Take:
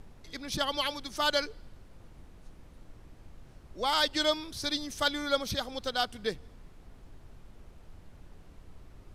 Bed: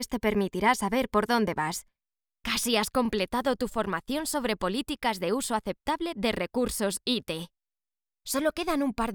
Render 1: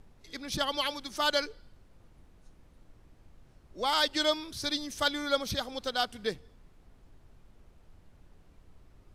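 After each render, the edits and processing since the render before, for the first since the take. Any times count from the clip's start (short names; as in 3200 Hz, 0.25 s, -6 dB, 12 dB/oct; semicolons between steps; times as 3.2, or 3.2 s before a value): noise print and reduce 6 dB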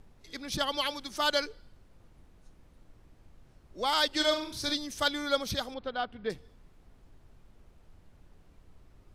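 4.08–4.75 flutter echo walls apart 7.2 m, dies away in 0.37 s; 5.74–6.3 air absorption 410 m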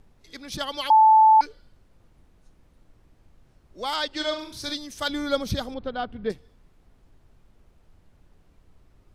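0.9–1.41 bleep 875 Hz -11 dBFS; 3.96–4.39 air absorption 62 m; 5.09–6.32 low shelf 480 Hz +10.5 dB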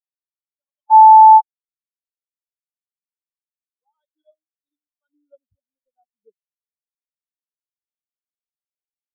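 AGC gain up to 11.5 dB; spectral expander 4:1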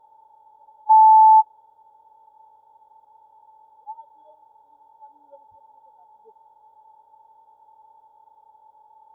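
per-bin compression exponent 0.4; limiter -7.5 dBFS, peak gain reduction 5.5 dB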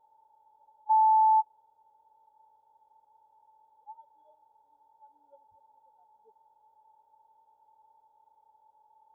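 gain -10.5 dB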